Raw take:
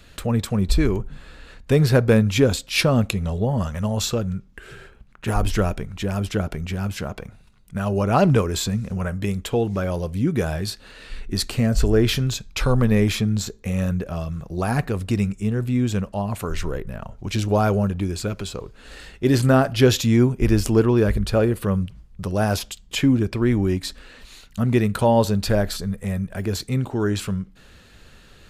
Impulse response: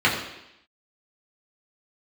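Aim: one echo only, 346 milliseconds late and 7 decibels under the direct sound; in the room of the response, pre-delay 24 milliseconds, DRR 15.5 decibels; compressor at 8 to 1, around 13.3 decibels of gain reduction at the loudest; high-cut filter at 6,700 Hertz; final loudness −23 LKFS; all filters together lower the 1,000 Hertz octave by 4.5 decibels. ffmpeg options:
-filter_complex "[0:a]lowpass=6700,equalizer=frequency=1000:width_type=o:gain=-6.5,acompressor=threshold=-26dB:ratio=8,aecho=1:1:346:0.447,asplit=2[link_01][link_02];[1:a]atrim=start_sample=2205,adelay=24[link_03];[link_02][link_03]afir=irnorm=-1:irlink=0,volume=-34.5dB[link_04];[link_01][link_04]amix=inputs=2:normalize=0,volume=8dB"

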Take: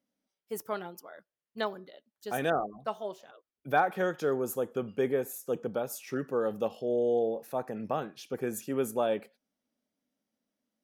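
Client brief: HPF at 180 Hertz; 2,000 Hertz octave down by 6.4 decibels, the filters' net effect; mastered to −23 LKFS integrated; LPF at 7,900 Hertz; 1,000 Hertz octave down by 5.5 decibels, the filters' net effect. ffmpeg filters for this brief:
ffmpeg -i in.wav -af "highpass=180,lowpass=7900,equalizer=frequency=1000:width_type=o:gain=-7.5,equalizer=frequency=2000:width_type=o:gain=-5.5,volume=12dB" out.wav

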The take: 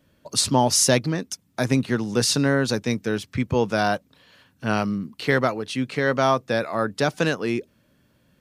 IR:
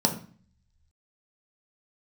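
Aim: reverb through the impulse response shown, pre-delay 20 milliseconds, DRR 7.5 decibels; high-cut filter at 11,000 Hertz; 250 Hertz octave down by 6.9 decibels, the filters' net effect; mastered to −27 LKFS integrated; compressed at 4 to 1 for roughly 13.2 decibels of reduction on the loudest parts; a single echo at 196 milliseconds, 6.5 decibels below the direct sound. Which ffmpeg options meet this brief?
-filter_complex "[0:a]lowpass=11000,equalizer=frequency=250:width_type=o:gain=-8.5,acompressor=threshold=-32dB:ratio=4,aecho=1:1:196:0.473,asplit=2[link_01][link_02];[1:a]atrim=start_sample=2205,adelay=20[link_03];[link_02][link_03]afir=irnorm=-1:irlink=0,volume=-19dB[link_04];[link_01][link_04]amix=inputs=2:normalize=0,volume=5.5dB"

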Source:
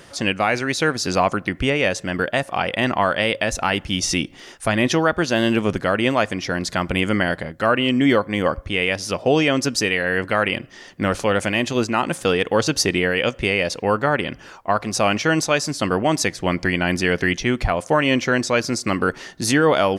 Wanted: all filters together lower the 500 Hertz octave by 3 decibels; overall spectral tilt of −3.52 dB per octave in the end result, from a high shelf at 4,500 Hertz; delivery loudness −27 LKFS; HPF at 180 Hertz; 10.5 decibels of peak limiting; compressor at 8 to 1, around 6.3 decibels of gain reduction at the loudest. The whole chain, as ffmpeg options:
ffmpeg -i in.wav -af "highpass=180,equalizer=frequency=500:width_type=o:gain=-3.5,highshelf=frequency=4500:gain=-6.5,acompressor=threshold=-21dB:ratio=8,volume=3dB,alimiter=limit=-14.5dB:level=0:latency=1" out.wav

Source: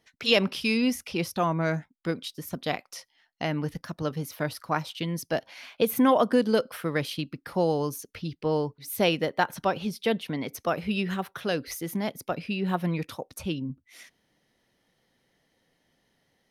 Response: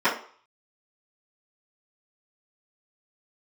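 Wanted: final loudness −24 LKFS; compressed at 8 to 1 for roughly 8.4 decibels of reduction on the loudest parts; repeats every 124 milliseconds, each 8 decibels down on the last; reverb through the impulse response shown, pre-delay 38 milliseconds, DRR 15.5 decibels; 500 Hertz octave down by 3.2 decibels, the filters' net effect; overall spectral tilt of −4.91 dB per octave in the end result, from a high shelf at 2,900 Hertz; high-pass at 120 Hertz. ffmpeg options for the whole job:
-filter_complex "[0:a]highpass=120,equalizer=frequency=500:width_type=o:gain=-3.5,highshelf=frequency=2900:gain=-7.5,acompressor=threshold=-27dB:ratio=8,aecho=1:1:124|248|372|496|620:0.398|0.159|0.0637|0.0255|0.0102,asplit=2[link_01][link_02];[1:a]atrim=start_sample=2205,adelay=38[link_03];[link_02][link_03]afir=irnorm=-1:irlink=0,volume=-33.5dB[link_04];[link_01][link_04]amix=inputs=2:normalize=0,volume=10dB"

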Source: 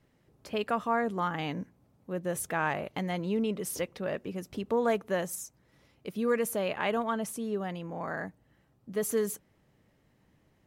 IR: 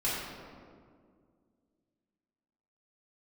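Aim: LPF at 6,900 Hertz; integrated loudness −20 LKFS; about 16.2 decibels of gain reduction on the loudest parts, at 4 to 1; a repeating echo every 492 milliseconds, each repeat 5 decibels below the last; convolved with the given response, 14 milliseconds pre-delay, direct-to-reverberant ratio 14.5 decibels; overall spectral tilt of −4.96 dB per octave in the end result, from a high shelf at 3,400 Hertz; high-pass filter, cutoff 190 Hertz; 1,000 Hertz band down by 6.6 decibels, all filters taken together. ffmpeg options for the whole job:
-filter_complex "[0:a]highpass=190,lowpass=6900,equalizer=frequency=1000:width_type=o:gain=-8.5,highshelf=frequency=3400:gain=-7.5,acompressor=threshold=-46dB:ratio=4,aecho=1:1:492|984|1476|1968|2460|2952|3444:0.562|0.315|0.176|0.0988|0.0553|0.031|0.0173,asplit=2[link_01][link_02];[1:a]atrim=start_sample=2205,adelay=14[link_03];[link_02][link_03]afir=irnorm=-1:irlink=0,volume=-23dB[link_04];[link_01][link_04]amix=inputs=2:normalize=0,volume=27.5dB"

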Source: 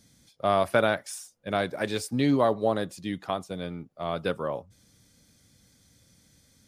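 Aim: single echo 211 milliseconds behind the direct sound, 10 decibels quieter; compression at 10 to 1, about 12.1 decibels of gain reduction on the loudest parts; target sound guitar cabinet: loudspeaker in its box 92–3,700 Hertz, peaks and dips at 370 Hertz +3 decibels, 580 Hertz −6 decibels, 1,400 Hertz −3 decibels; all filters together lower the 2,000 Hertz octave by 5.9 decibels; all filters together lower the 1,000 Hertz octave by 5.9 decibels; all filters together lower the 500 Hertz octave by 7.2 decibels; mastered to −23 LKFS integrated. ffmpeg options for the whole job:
ffmpeg -i in.wav -af "equalizer=frequency=500:width_type=o:gain=-4.5,equalizer=frequency=1000:width_type=o:gain=-3.5,equalizer=frequency=2000:width_type=o:gain=-4,acompressor=threshold=-33dB:ratio=10,highpass=92,equalizer=frequency=370:width_type=q:width=4:gain=3,equalizer=frequency=580:width_type=q:width=4:gain=-6,equalizer=frequency=1400:width_type=q:width=4:gain=-3,lowpass=frequency=3700:width=0.5412,lowpass=frequency=3700:width=1.3066,aecho=1:1:211:0.316,volume=17.5dB" out.wav

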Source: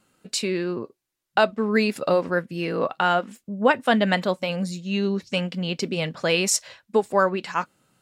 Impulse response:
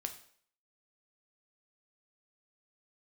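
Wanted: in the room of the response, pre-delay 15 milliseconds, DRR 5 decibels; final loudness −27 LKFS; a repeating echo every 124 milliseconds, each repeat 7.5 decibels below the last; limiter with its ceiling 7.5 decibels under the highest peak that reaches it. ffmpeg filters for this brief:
-filter_complex "[0:a]alimiter=limit=-12.5dB:level=0:latency=1,aecho=1:1:124|248|372|496|620:0.422|0.177|0.0744|0.0312|0.0131,asplit=2[link_01][link_02];[1:a]atrim=start_sample=2205,adelay=15[link_03];[link_02][link_03]afir=irnorm=-1:irlink=0,volume=-4dB[link_04];[link_01][link_04]amix=inputs=2:normalize=0,volume=-3.5dB"

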